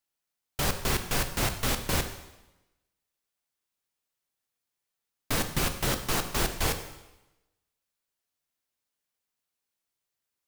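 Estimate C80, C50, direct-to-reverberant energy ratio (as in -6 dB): 11.5 dB, 10.0 dB, 6.5 dB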